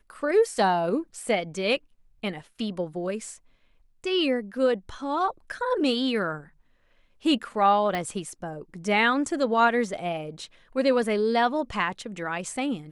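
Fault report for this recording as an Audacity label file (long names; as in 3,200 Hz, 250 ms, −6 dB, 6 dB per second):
7.950000	7.950000	click −16 dBFS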